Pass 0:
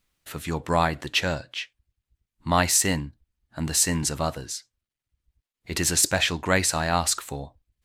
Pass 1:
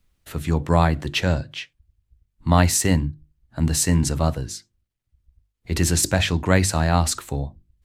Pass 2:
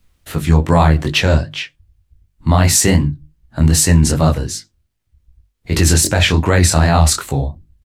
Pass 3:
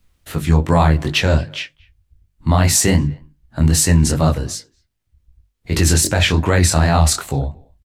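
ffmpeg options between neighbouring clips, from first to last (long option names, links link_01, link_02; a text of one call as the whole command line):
ffmpeg -i in.wav -filter_complex "[0:a]lowshelf=frequency=490:gain=9,bandreject=frequency=50:width_type=h:width=6,bandreject=frequency=100:width_type=h:width=6,bandreject=frequency=150:width_type=h:width=6,bandreject=frequency=200:width_type=h:width=6,bandreject=frequency=250:width_type=h:width=6,bandreject=frequency=300:width_type=h:width=6,bandreject=frequency=350:width_type=h:width=6,acrossover=split=130|1600[link_01][link_02][link_03];[link_01]acontrast=29[link_04];[link_04][link_02][link_03]amix=inputs=3:normalize=0,volume=-1dB" out.wav
ffmpeg -i in.wav -filter_complex "[0:a]asplit=2[link_01][link_02];[link_02]adelay=13,volume=-14dB[link_03];[link_01][link_03]amix=inputs=2:normalize=0,flanger=delay=19:depth=7.6:speed=2.6,alimiter=level_in=12.5dB:limit=-1dB:release=50:level=0:latency=1,volume=-1dB" out.wav
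ffmpeg -i in.wav -filter_complex "[0:a]asplit=2[link_01][link_02];[link_02]adelay=230,highpass=300,lowpass=3400,asoftclip=type=hard:threshold=-10dB,volume=-26dB[link_03];[link_01][link_03]amix=inputs=2:normalize=0,volume=-2dB" out.wav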